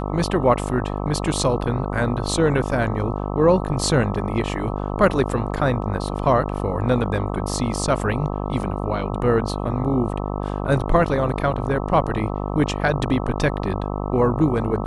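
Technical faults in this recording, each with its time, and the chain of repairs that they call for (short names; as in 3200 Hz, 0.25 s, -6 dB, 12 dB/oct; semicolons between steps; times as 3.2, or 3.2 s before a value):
buzz 50 Hz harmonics 26 -26 dBFS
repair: de-hum 50 Hz, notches 26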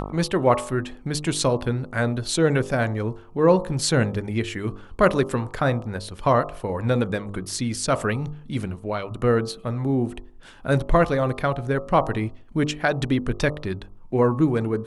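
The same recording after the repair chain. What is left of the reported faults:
none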